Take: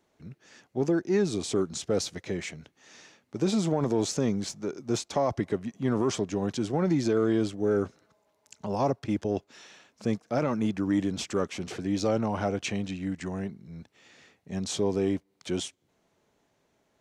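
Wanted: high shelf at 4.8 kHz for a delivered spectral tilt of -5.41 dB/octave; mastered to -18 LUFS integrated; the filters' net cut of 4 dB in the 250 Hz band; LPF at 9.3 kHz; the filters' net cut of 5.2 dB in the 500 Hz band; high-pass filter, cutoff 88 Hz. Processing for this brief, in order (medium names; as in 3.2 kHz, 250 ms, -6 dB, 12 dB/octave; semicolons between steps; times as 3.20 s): high-pass 88 Hz; low-pass 9.3 kHz; peaking EQ 250 Hz -3.5 dB; peaking EQ 500 Hz -5.5 dB; treble shelf 4.8 kHz -4 dB; trim +15 dB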